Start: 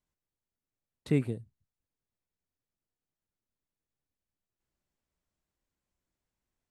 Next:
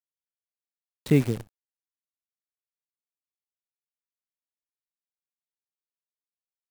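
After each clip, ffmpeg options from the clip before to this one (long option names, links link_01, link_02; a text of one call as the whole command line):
ffmpeg -i in.wav -af "acrusher=bits=8:dc=4:mix=0:aa=0.000001,volume=7dB" out.wav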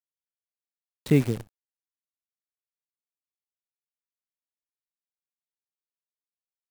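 ffmpeg -i in.wav -af anull out.wav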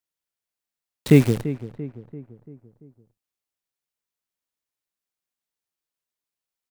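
ffmpeg -i in.wav -filter_complex "[0:a]asplit=2[link_01][link_02];[link_02]adelay=340,lowpass=frequency=1600:poles=1,volume=-14dB,asplit=2[link_03][link_04];[link_04]adelay=340,lowpass=frequency=1600:poles=1,volume=0.53,asplit=2[link_05][link_06];[link_06]adelay=340,lowpass=frequency=1600:poles=1,volume=0.53,asplit=2[link_07][link_08];[link_08]adelay=340,lowpass=frequency=1600:poles=1,volume=0.53,asplit=2[link_09][link_10];[link_10]adelay=340,lowpass=frequency=1600:poles=1,volume=0.53[link_11];[link_01][link_03][link_05][link_07][link_09][link_11]amix=inputs=6:normalize=0,volume=6.5dB" out.wav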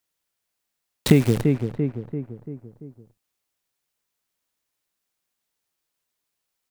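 ffmpeg -i in.wav -af "acompressor=threshold=-21dB:ratio=5,volume=8.5dB" out.wav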